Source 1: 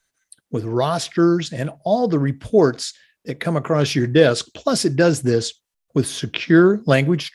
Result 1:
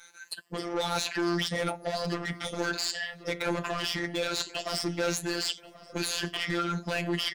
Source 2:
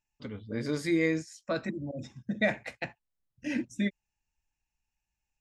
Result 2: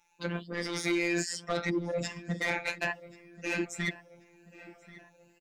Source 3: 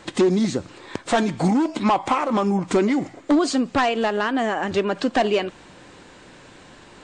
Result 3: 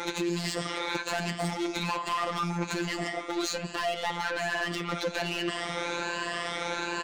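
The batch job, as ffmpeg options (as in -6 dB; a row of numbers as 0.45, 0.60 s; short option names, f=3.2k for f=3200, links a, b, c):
-filter_complex "[0:a]afftfilt=real='re*pow(10,13/40*sin(2*PI*(1.4*log(max(b,1)*sr/1024/100)/log(2)-(1.2)*(pts-256)/sr)))':imag='im*pow(10,13/40*sin(2*PI*(1.4*log(max(b,1)*sr/1024/100)/log(2)-(1.2)*(pts-256)/sr)))':win_size=1024:overlap=0.75,acrossover=split=130|1900[a][b][c];[a]acompressor=threshold=-37dB:ratio=4[d];[b]acompressor=threshold=-29dB:ratio=4[e];[c]acompressor=threshold=-31dB:ratio=4[f];[d][e][f]amix=inputs=3:normalize=0,asplit=2[g][h];[h]highpass=f=720:p=1,volume=29dB,asoftclip=type=tanh:threshold=-9dB[i];[g][i]amix=inputs=2:normalize=0,lowpass=f=3.5k:p=1,volume=-6dB,areverse,acompressor=threshold=-26dB:ratio=8,areverse,afftfilt=real='hypot(re,im)*cos(PI*b)':imag='0':win_size=1024:overlap=0.75,asplit=2[j][k];[k]adelay=1084,lowpass=f=2.7k:p=1,volume=-18dB,asplit=2[l][m];[m]adelay=1084,lowpass=f=2.7k:p=1,volume=0.52,asplit=2[n][o];[o]adelay=1084,lowpass=f=2.7k:p=1,volume=0.52,asplit=2[p][q];[q]adelay=1084,lowpass=f=2.7k:p=1,volume=0.52[r];[l][n][p][r]amix=inputs=4:normalize=0[s];[j][s]amix=inputs=2:normalize=0"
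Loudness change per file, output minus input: -12.0, 0.0, -9.5 LU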